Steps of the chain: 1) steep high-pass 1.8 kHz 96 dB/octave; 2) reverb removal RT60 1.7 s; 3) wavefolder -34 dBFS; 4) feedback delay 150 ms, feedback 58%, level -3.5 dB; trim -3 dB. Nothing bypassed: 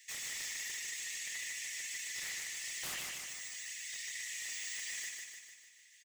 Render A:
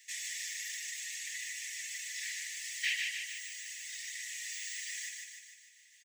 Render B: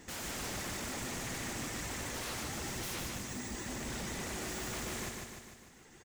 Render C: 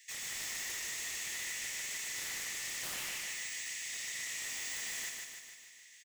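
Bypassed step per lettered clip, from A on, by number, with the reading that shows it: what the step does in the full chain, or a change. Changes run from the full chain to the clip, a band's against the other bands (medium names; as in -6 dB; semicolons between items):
3, distortion -3 dB; 1, 8 kHz band -19.5 dB; 2, 8 kHz band -3.5 dB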